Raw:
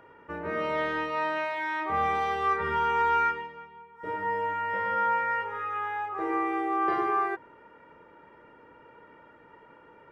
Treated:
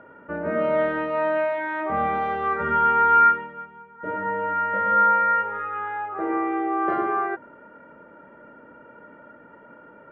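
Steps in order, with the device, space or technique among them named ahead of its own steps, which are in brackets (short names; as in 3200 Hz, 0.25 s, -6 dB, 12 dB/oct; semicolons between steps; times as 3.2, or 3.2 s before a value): inside a cardboard box (LPF 2500 Hz 12 dB/oct; small resonant body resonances 230/590/1400 Hz, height 12 dB, ringing for 25 ms)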